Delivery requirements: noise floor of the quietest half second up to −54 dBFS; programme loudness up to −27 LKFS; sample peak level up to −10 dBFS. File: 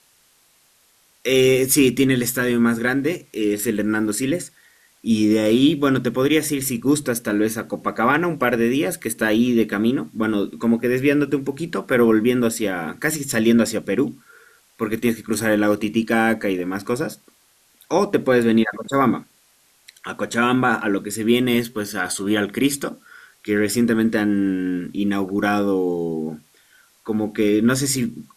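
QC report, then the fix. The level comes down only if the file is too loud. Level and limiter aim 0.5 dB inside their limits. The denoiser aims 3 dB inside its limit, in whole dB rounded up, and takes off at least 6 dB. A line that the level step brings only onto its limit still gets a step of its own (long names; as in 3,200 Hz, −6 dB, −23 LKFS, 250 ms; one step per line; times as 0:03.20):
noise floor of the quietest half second −58 dBFS: in spec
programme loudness −20.0 LKFS: out of spec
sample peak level −5.0 dBFS: out of spec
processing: level −7.5 dB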